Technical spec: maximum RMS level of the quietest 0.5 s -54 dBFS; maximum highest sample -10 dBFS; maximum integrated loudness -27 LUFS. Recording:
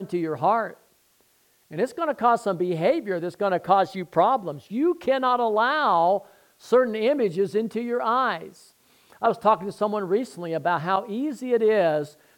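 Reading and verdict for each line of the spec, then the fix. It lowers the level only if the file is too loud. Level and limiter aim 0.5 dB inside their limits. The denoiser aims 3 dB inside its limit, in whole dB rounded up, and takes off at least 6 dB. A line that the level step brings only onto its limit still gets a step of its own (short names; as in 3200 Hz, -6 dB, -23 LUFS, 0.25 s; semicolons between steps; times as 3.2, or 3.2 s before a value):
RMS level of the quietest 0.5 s -63 dBFS: OK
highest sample -5.5 dBFS: fail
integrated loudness -23.5 LUFS: fail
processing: gain -4 dB; limiter -10.5 dBFS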